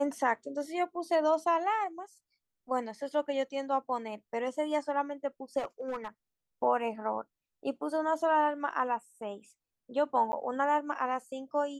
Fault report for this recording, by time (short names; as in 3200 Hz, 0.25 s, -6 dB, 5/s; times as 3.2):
5.58–6.08 clipped -30.5 dBFS
10.32–10.33 gap 10 ms